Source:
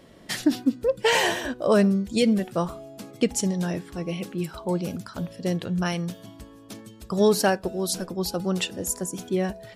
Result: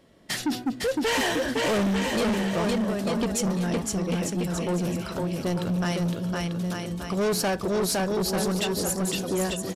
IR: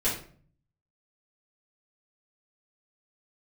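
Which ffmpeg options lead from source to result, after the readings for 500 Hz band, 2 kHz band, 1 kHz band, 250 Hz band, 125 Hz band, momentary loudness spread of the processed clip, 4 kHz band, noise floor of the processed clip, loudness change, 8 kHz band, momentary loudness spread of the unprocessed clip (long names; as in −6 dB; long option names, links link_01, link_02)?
−1.5 dB, −0.5 dB, 0.0 dB, −0.5 dB, +1.0 dB, 5 LU, 0.0 dB, −38 dBFS, −1.0 dB, +1.0 dB, 14 LU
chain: -af "aecho=1:1:510|892.5|1179|1395|1556:0.631|0.398|0.251|0.158|0.1,asoftclip=type=tanh:threshold=-24dB,agate=range=-9dB:threshold=-39dB:ratio=16:detection=peak,aresample=32000,aresample=44100,volume=2.5dB"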